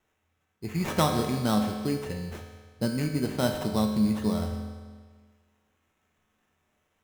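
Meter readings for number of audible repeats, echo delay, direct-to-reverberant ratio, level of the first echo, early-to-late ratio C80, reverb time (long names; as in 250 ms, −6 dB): no echo audible, no echo audible, 2.5 dB, no echo audible, 6.5 dB, 1.6 s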